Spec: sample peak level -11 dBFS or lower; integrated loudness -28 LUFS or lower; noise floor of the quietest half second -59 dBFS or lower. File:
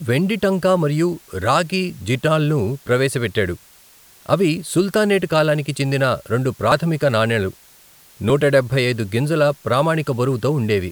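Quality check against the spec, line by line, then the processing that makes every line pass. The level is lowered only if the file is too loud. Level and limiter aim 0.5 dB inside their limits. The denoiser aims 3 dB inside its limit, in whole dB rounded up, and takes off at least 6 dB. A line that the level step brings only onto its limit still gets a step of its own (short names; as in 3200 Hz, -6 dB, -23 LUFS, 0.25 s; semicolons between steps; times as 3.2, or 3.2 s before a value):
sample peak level -2.0 dBFS: fail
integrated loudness -19.0 LUFS: fail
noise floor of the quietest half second -49 dBFS: fail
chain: denoiser 6 dB, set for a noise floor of -49 dBFS; gain -9.5 dB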